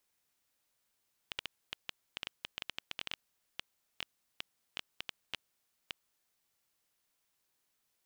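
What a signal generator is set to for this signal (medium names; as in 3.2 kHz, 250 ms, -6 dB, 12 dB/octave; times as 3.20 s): random clicks 6.5 per s -19.5 dBFS 4.79 s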